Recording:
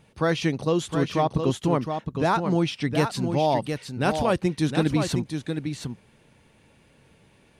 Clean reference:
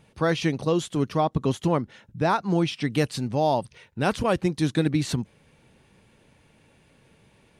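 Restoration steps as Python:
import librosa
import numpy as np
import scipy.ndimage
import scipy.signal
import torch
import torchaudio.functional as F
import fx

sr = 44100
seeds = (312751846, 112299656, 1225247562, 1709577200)

y = fx.fix_declip(x, sr, threshold_db=-10.5)
y = fx.fix_echo_inverse(y, sr, delay_ms=714, level_db=-6.5)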